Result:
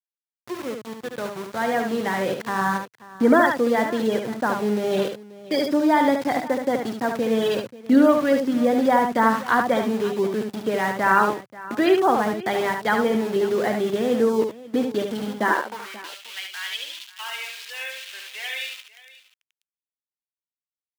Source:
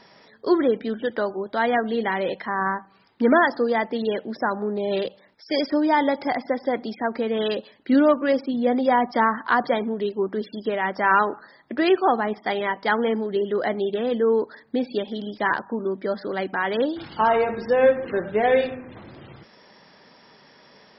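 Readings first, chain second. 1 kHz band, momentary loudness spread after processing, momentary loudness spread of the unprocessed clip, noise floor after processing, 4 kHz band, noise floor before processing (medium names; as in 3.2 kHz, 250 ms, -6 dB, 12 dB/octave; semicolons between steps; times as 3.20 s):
0.0 dB, 15 LU, 9 LU, under -85 dBFS, +2.5 dB, -54 dBFS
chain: fade-in on the opening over 2.43 s; treble shelf 4.4 kHz -3.5 dB; small samples zeroed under -31.5 dBFS; high-pass sweep 120 Hz -> 2.9 kHz, 15.30–15.98 s; on a send: multi-tap echo 72/535 ms -5.5/-18 dB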